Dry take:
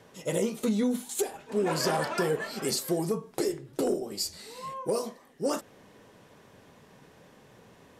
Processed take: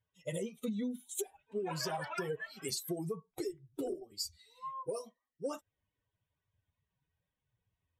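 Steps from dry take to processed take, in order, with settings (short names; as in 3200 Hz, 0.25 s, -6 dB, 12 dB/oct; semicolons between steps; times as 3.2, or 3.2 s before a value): per-bin expansion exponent 2; compressor, threshold -32 dBFS, peak gain reduction 7.5 dB; gain -1.5 dB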